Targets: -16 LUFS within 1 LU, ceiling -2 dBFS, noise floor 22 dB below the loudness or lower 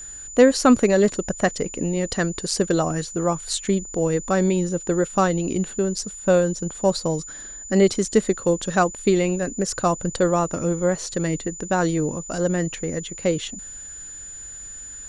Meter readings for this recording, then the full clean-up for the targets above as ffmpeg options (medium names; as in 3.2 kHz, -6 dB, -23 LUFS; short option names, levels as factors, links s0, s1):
steady tone 7 kHz; tone level -35 dBFS; loudness -22.0 LUFS; peak level -3.5 dBFS; loudness target -16.0 LUFS
-> -af "bandreject=f=7000:w=30"
-af "volume=2,alimiter=limit=0.794:level=0:latency=1"